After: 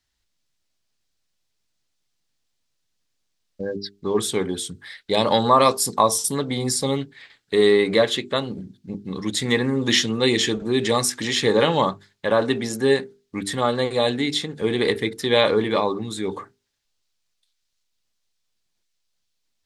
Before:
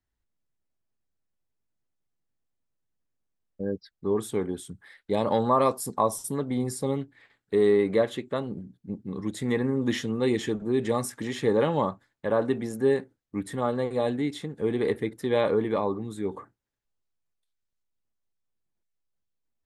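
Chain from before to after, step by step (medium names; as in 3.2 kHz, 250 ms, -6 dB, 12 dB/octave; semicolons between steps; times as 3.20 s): peaking EQ 4.5 kHz +14.5 dB 2.2 oct; hum notches 50/100/150/200/250/300/350/400/450 Hz; trim +4.5 dB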